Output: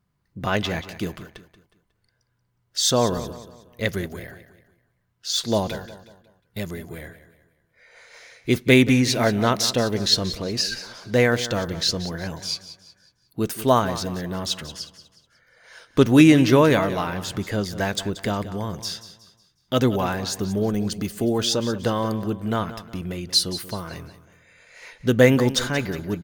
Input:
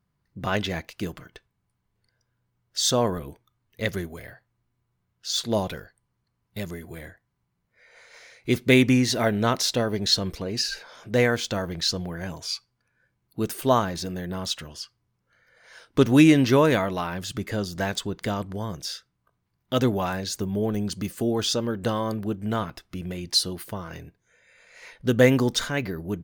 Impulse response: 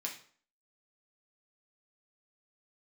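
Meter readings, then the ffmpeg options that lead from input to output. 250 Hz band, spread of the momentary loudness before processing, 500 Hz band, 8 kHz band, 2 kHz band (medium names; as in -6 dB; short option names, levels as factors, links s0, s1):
+2.5 dB, 17 LU, +2.5 dB, +2.5 dB, +2.5 dB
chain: -af "aecho=1:1:182|364|546|728:0.2|0.0778|0.0303|0.0118,volume=1.33"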